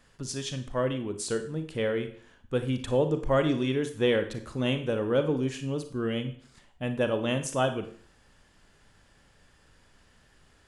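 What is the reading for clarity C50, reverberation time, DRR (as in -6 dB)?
10.0 dB, 0.50 s, 8.0 dB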